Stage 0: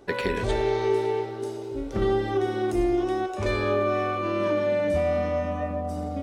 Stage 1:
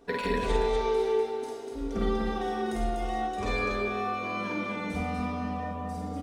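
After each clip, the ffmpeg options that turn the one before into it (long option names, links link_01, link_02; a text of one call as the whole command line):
ffmpeg -i in.wav -filter_complex "[0:a]aecho=1:1:4.3:0.77,asplit=2[link_01][link_02];[link_02]aecho=0:1:49.56|244.9:0.794|0.631[link_03];[link_01][link_03]amix=inputs=2:normalize=0,volume=-6.5dB" out.wav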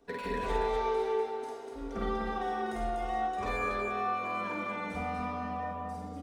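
ffmpeg -i in.wav -filter_complex "[0:a]acrossover=split=360|560|2000[link_01][link_02][link_03][link_04];[link_03]dynaudnorm=framelen=160:gausssize=5:maxgain=8.5dB[link_05];[link_04]asoftclip=type=hard:threshold=-39.5dB[link_06];[link_01][link_02][link_05][link_06]amix=inputs=4:normalize=0,volume=-7dB" out.wav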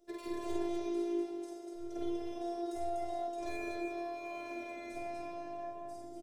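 ffmpeg -i in.wav -af "firequalizer=gain_entry='entry(310,0);entry(550,8);entry(890,-10);entry(5700,5)':delay=0.05:min_phase=1,afftfilt=real='hypot(re,im)*cos(PI*b)':imag='0':win_size=512:overlap=0.75,volume=-2dB" out.wav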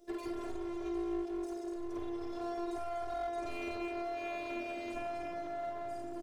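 ffmpeg -i in.wav -af "acompressor=threshold=-37dB:ratio=6,aeval=exprs='clip(val(0),-1,0.0075)':channel_layout=same,volume=6.5dB" out.wav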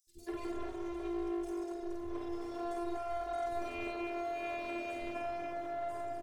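ffmpeg -i in.wav -filter_complex "[0:a]acrossover=split=210|5000[link_01][link_02][link_03];[link_01]adelay=70[link_04];[link_02]adelay=190[link_05];[link_04][link_05][link_03]amix=inputs=3:normalize=0,volume=1dB" out.wav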